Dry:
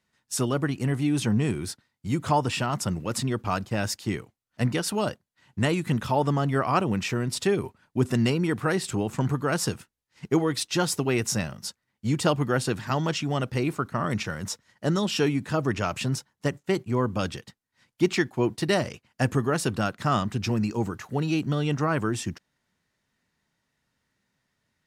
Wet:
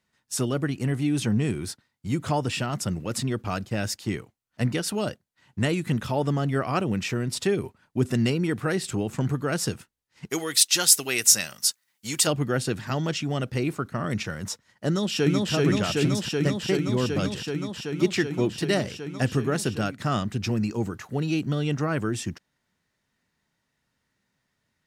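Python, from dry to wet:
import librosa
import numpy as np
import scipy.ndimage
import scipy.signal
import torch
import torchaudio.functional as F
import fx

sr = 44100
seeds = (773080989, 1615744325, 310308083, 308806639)

y = fx.tilt_eq(x, sr, slope=4.5, at=(10.29, 12.26), fade=0.02)
y = fx.echo_throw(y, sr, start_s=14.88, length_s=0.64, ms=380, feedback_pct=85, wet_db=-0.5)
y = fx.dynamic_eq(y, sr, hz=980.0, q=2.0, threshold_db=-43.0, ratio=4.0, max_db=-7)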